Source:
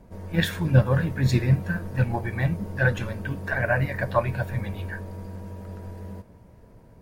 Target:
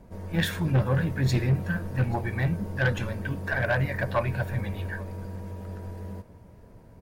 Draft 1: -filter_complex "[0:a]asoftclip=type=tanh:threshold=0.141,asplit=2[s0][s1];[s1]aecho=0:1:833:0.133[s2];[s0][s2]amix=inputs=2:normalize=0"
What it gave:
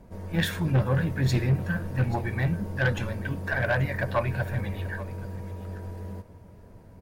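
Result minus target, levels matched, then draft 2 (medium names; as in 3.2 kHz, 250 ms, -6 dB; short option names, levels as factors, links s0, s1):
echo-to-direct +7 dB
-filter_complex "[0:a]asoftclip=type=tanh:threshold=0.141,asplit=2[s0][s1];[s1]aecho=0:1:833:0.0596[s2];[s0][s2]amix=inputs=2:normalize=0"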